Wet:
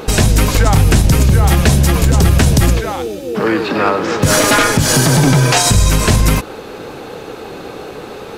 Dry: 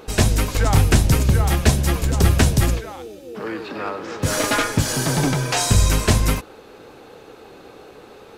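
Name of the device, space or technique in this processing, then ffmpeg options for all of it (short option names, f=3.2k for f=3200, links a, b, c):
mastering chain: -af "equalizer=f=160:t=o:w=0.73:g=3.5,acompressor=threshold=-20dB:ratio=2,alimiter=level_in=14.5dB:limit=-1dB:release=50:level=0:latency=1,volume=-1dB"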